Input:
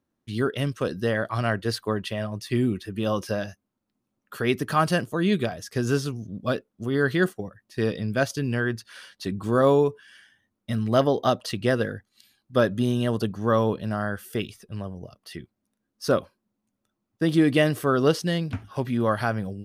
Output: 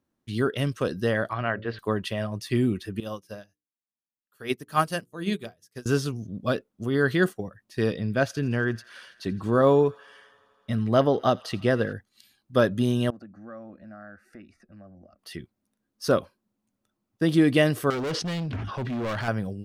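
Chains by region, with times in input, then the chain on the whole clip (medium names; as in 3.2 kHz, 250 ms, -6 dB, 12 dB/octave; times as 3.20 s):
1.33–1.79 s: low-pass 2.9 kHz 24 dB/octave + bass shelf 480 Hz -5.5 dB + de-hum 54.3 Hz, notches 11
3.00–5.86 s: treble shelf 6.5 kHz +11 dB + hum notches 60/120/180/240/300/360/420/480 Hz + upward expansion 2.5:1, over -37 dBFS
7.94–11.93 s: treble shelf 4.8 kHz -8.5 dB + feedback echo behind a high-pass 83 ms, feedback 82%, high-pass 1.5 kHz, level -21.5 dB
13.10–15.19 s: low-pass 3 kHz + static phaser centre 650 Hz, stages 8 + compression 2:1, threshold -53 dBFS
17.90–19.28 s: low-pass 4.5 kHz + overload inside the chain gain 27 dB + decay stretcher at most 34 dB/s
whole clip: none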